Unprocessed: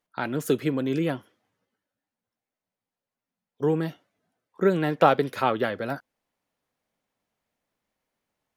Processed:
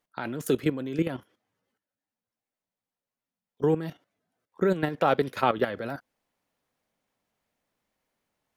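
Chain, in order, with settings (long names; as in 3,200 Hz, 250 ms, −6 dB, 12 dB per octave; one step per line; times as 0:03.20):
output level in coarse steps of 12 dB
level +3 dB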